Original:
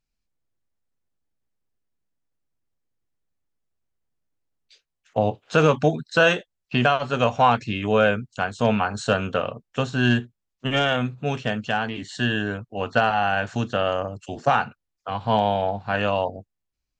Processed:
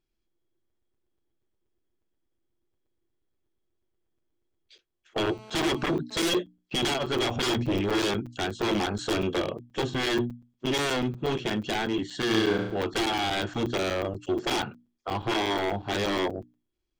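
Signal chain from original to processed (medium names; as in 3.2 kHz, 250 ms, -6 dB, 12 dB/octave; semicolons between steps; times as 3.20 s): 9.17–10.03 s: band-stop 1.4 kHz, Q 6.2; treble shelf 5.5 kHz -8 dB; hum notches 60/120/180/240/300 Hz; 7.36–7.81 s: tilt EQ -2.5 dB/octave; wavefolder -22 dBFS; small resonant body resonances 350/3300 Hz, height 18 dB, ringing for 70 ms; saturation -20 dBFS, distortion -15 dB; 5.29–6.38 s: mobile phone buzz -48 dBFS; 12.27–12.77 s: flutter echo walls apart 6.2 m, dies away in 0.69 s; crackling interface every 0.12 s, samples 256, zero, from 0.70 s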